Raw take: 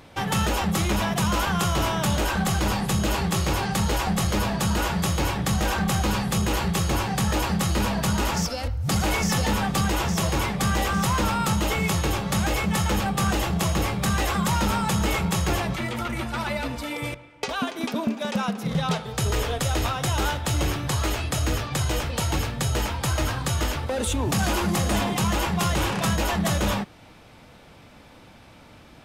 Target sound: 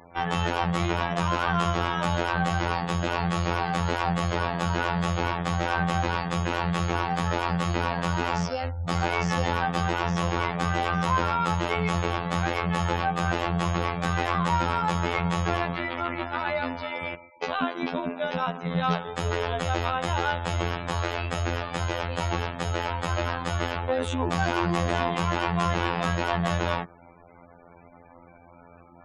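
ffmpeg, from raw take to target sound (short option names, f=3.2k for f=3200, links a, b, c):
-filter_complex "[0:a]asplit=2[a][b];[b]highpass=f=720:p=1,volume=7dB,asoftclip=type=tanh:threshold=-17dB[c];[a][c]amix=inputs=2:normalize=0,lowpass=f=3.1k:p=1,volume=-6dB,highshelf=f=4k:g=-10.5,acrossover=split=130|730|3600[d][e][f][g];[e]crystalizer=i=3.5:c=0[h];[d][h][f][g]amix=inputs=4:normalize=0,afftfilt=real='hypot(re,im)*cos(PI*b)':imag='0':win_size=2048:overlap=0.75,afftfilt=real='re*gte(hypot(re,im),0.00398)':imag='im*gte(hypot(re,im),0.00398)':win_size=1024:overlap=0.75,volume=4dB"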